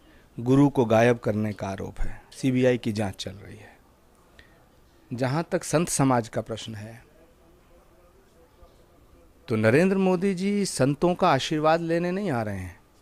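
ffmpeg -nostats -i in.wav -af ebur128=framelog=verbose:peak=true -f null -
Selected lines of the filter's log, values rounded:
Integrated loudness:
  I:         -24.2 LUFS
  Threshold: -36.3 LUFS
Loudness range:
  LRA:         7.8 LU
  Threshold: -47.0 LUFS
  LRA low:   -31.2 LUFS
  LRA high:  -23.5 LUFS
True peak:
  Peak:       -9.0 dBFS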